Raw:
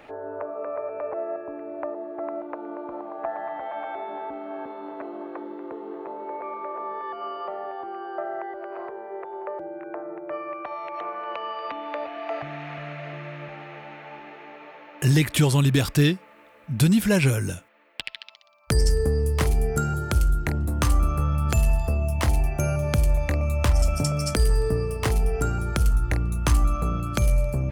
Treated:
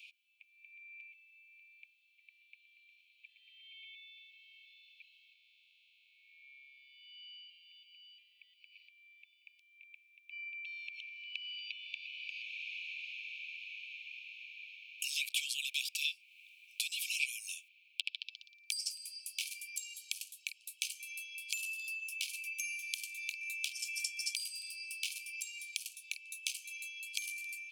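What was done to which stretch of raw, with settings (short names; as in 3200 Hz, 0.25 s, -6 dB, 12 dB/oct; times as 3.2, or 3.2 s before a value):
5.33–7.5 time blur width 0.356 s
whole clip: Chebyshev high-pass 2300 Hz, order 10; high shelf 5400 Hz -8.5 dB; compressor 2:1, threshold -45 dBFS; gain +6 dB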